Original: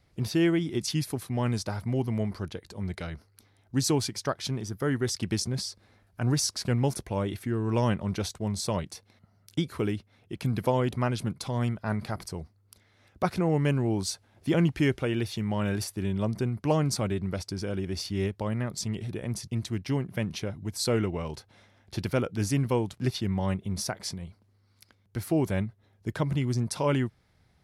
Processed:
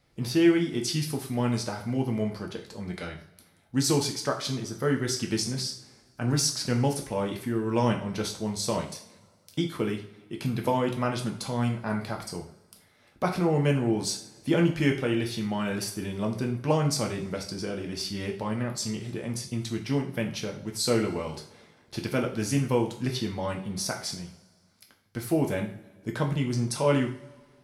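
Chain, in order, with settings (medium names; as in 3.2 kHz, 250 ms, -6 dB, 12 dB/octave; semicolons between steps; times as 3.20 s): bass shelf 150 Hz -6 dB; two-slope reverb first 0.43 s, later 1.8 s, from -21 dB, DRR 1.5 dB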